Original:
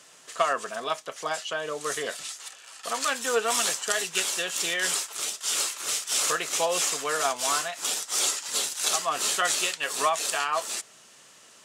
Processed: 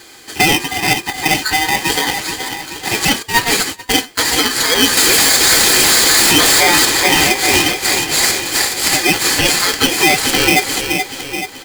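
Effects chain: high shelf 7300 Hz -9.5 dB; 4.97–6.85 power-law curve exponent 0.35; tape echo 0.429 s, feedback 56%, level -7 dB, low-pass 3800 Hz; 3.22–4.2 gate -26 dBFS, range -28 dB; ripple EQ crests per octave 1.2, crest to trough 12 dB; flange 0.87 Hz, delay 3.8 ms, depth 6.6 ms, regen -84%; comb 4.8 ms, depth 67%; maximiser +17.5 dB; polarity switched at an audio rate 1400 Hz; gain -1 dB

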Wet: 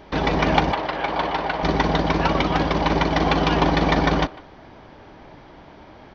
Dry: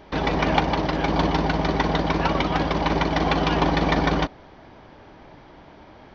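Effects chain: 0.72–1.63 three-band isolator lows -14 dB, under 460 Hz, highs -14 dB, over 4100 Hz; speakerphone echo 0.15 s, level -19 dB; gain +2 dB

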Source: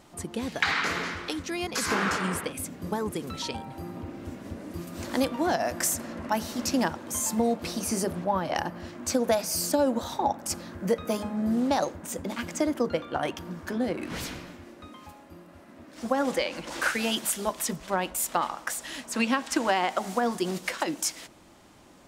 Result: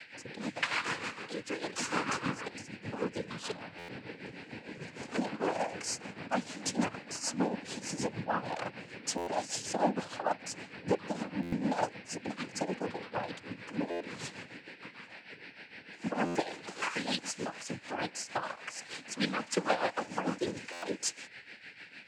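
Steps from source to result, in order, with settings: whine 2400 Hz -43 dBFS; tremolo 6.6 Hz, depth 70%; noise vocoder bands 8; stuck buffer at 3.78/9.17/11.42/13.9/16.25/20.72, samples 512, times 8; gain -3 dB

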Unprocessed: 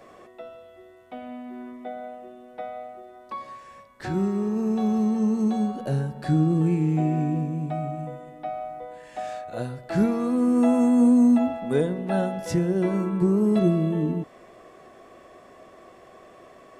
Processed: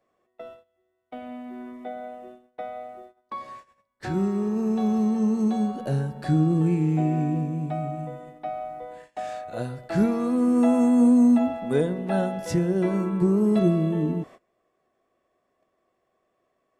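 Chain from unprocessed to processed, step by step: gate -43 dBFS, range -24 dB

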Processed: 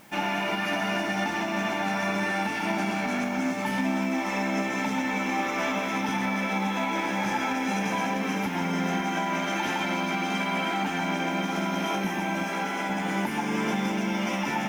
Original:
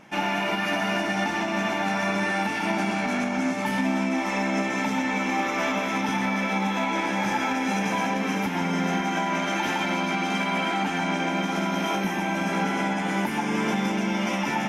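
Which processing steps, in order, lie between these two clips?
in parallel at -3.5 dB: requantised 8-bit, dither triangular; 12.44–12.9 on the sum: low shelf 220 Hz -12 dB; gain -6.5 dB

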